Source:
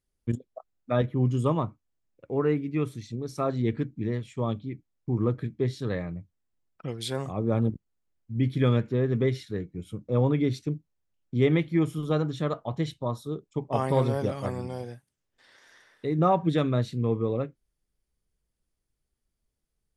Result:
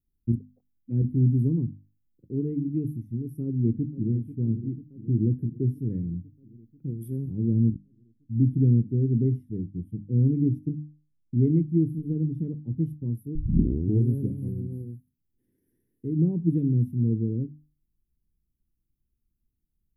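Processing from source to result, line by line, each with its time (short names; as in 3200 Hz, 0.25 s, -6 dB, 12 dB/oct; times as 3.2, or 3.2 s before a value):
3.43–4.11 echo throw 0.49 s, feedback 70%, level -13 dB
7.38–12.85 air absorption 52 m
13.35 tape start 0.73 s
whole clip: inverse Chebyshev band-stop 600–7700 Hz, stop band 40 dB; notches 50/100/150/200/250/300 Hz; gain +4.5 dB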